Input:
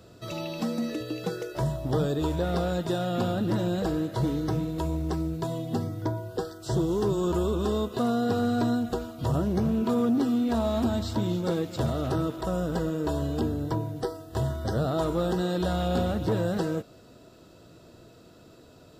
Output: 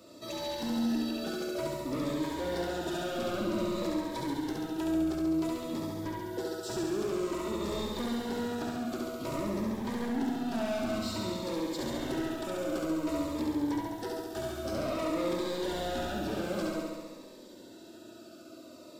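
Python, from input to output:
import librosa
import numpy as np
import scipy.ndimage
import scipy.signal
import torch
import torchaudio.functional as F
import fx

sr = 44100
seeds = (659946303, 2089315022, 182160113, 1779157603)

y = scipy.signal.sosfilt(scipy.signal.butter(2, 220.0, 'highpass', fs=sr, output='sos'), x)
y = y + 0.55 * np.pad(y, (int(3.3 * sr / 1000.0), 0))[:len(y)]
y = 10.0 ** (-31.5 / 20.0) * np.tanh(y / 10.0 ** (-31.5 / 20.0))
y = fx.room_flutter(y, sr, wall_m=11.8, rt60_s=1.5)
y = fx.notch_cascade(y, sr, direction='falling', hz=0.53)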